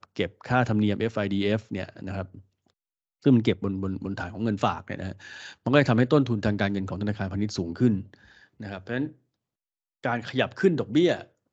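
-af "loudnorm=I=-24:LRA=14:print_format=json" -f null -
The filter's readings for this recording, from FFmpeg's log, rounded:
"input_i" : "-26.4",
"input_tp" : "-4.4",
"input_lra" : "3.6",
"input_thresh" : "-37.0",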